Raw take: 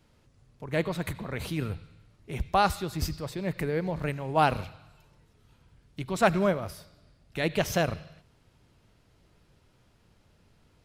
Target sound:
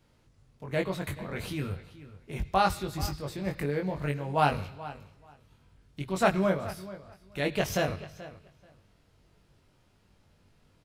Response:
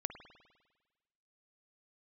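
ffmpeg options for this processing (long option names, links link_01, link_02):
-filter_complex "[0:a]asplit=2[link_01][link_02];[link_02]adelay=21,volume=-3.5dB[link_03];[link_01][link_03]amix=inputs=2:normalize=0,asplit=2[link_04][link_05];[link_05]adelay=432,lowpass=frequency=4400:poles=1,volume=-16dB,asplit=2[link_06][link_07];[link_07]adelay=432,lowpass=frequency=4400:poles=1,volume=0.17[link_08];[link_06][link_08]amix=inputs=2:normalize=0[link_09];[link_04][link_09]amix=inputs=2:normalize=0,volume=-3dB"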